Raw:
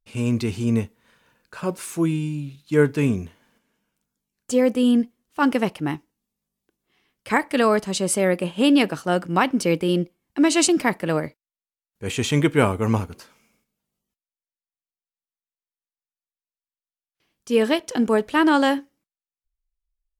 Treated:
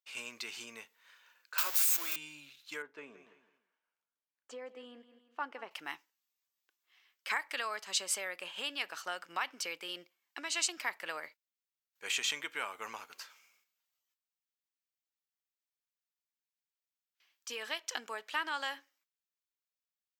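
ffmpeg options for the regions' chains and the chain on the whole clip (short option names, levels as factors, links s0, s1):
-filter_complex "[0:a]asettb=1/sr,asplit=3[s0][s1][s2];[s0]atrim=end=1.584[s3];[s1]atrim=start=1.58:end=2.16,asetpts=PTS-STARTPTS,afade=t=in:d=0.004:c=qsin,afade=t=out:st=0.576:d=0.004:c=qsin,aeval=exprs='val(0)+0.5*0.0473*sgn(val(0))':c=same,highpass=f=590:p=1,aemphasis=mode=production:type=50fm[s4];[s2]atrim=start=2.156[s5];[s3][s4]acrossfade=d=0.004:c1=hsin:c2=qsin[s6];[s6][s5]acrossfade=d=0.004:c1=qsin:c2=hsin,asettb=1/sr,asplit=3[s7][s8][s9];[s7]atrim=end=2.824[s10];[s8]atrim=start=2.82:end=5.71,asetpts=PTS-STARTPTS,afade=t=in:d=0.004:c=qsin,afade=t=out:st=2.886:d=0.004:c=qsin,bandpass=f=390:t=q:w=0.63,aecho=1:1:166|332|498:0.15|0.0479|0.0153,atrim=end_sample=127449[s11];[s9]atrim=start=5.706[s12];[s10][s11]acrossfade=d=0.004:c1=hsin:c2=qsin[s13];[s13][s12]acrossfade=d=0.004:c1=qsin:c2=hsin,equalizer=f=9800:t=o:w=0.28:g=-13.5,acompressor=threshold=0.0562:ratio=6,highpass=1300"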